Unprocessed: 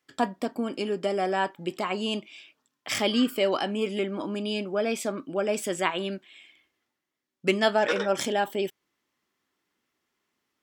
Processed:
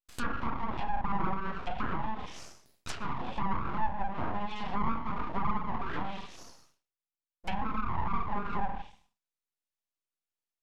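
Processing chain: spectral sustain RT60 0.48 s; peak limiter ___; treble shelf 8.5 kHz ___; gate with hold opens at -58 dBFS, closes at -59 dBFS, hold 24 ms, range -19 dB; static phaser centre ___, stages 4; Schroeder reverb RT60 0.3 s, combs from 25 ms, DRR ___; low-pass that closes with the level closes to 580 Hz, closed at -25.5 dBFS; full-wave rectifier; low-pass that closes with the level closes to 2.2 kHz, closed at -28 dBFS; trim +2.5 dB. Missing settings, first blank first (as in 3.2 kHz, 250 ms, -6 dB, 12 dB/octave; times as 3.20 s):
-18.5 dBFS, +3 dB, 560 Hz, 1 dB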